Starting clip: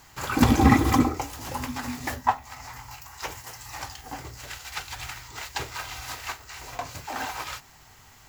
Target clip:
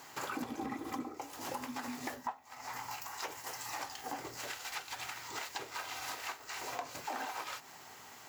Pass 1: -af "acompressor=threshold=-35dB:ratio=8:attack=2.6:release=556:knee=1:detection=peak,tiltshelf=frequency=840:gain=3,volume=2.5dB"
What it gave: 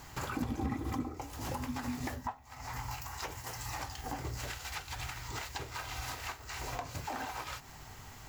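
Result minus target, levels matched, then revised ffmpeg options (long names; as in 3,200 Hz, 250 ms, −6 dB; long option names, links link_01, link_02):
250 Hz band +3.0 dB
-af "acompressor=threshold=-35dB:ratio=8:attack=2.6:release=556:knee=1:detection=peak,highpass=300,tiltshelf=frequency=840:gain=3,volume=2.5dB"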